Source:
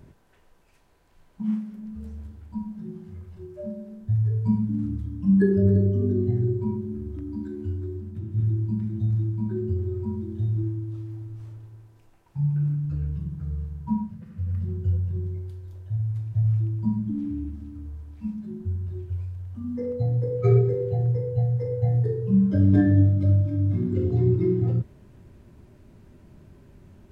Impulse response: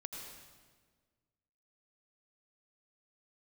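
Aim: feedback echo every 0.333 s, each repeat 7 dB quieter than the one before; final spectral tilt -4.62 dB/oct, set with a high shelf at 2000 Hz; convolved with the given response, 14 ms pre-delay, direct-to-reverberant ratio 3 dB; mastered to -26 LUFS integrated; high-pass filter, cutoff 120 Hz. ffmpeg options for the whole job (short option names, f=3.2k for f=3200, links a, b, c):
-filter_complex "[0:a]highpass=120,highshelf=f=2k:g=-5.5,aecho=1:1:333|666|999|1332|1665:0.447|0.201|0.0905|0.0407|0.0183,asplit=2[a][b];[1:a]atrim=start_sample=2205,adelay=14[c];[b][c]afir=irnorm=-1:irlink=0,volume=-1dB[d];[a][d]amix=inputs=2:normalize=0"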